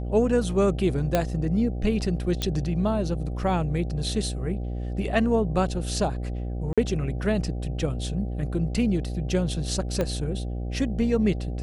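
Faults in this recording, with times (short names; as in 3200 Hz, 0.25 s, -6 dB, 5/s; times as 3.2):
buzz 60 Hz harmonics 13 -30 dBFS
1.15 pop -8 dBFS
2.42 pop -12 dBFS
6.73–6.78 gap 46 ms
10.01 pop -13 dBFS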